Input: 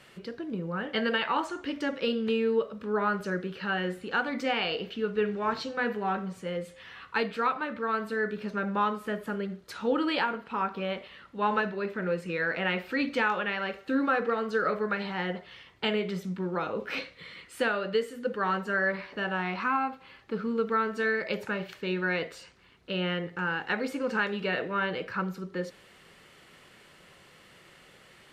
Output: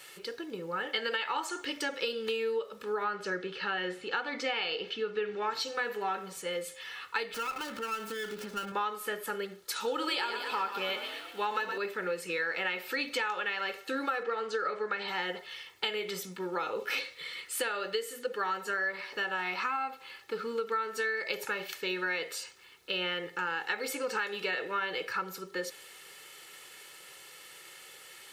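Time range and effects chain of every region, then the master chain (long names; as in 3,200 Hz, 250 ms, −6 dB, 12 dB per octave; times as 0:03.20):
0:03.04–0:05.50: band-pass filter 100–4,600 Hz + low-shelf EQ 190 Hz +5.5 dB
0:07.34–0:08.72: downward compressor, threshold −36 dBFS + hollow resonant body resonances 200/1,400/3,000 Hz, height 10 dB, ringing for 20 ms + windowed peak hold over 9 samples
0:09.76–0:11.78: high-shelf EQ 4,800 Hz +8 dB + echo with shifted repeats 118 ms, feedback 58%, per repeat +37 Hz, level −9.5 dB
0:14.23–0:15.08: low-pass filter 8,900 Hz 24 dB per octave + high-shelf EQ 5,800 Hz −8.5 dB
whole clip: RIAA equalisation recording; comb filter 2.3 ms, depth 48%; downward compressor, threshold −29 dBFS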